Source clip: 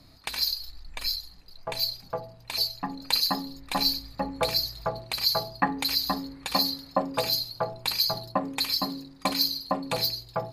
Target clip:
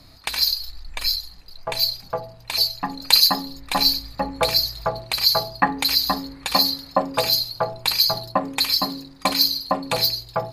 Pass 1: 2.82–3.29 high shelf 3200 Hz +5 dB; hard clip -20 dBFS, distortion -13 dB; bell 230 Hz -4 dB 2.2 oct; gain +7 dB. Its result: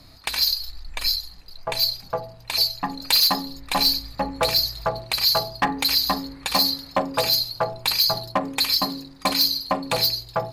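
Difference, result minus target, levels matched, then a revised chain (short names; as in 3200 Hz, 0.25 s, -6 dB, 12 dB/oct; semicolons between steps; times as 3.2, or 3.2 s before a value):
hard clip: distortion +25 dB
2.82–3.29 high shelf 3200 Hz +5 dB; hard clip -8.5 dBFS, distortion -37 dB; bell 230 Hz -4 dB 2.2 oct; gain +7 dB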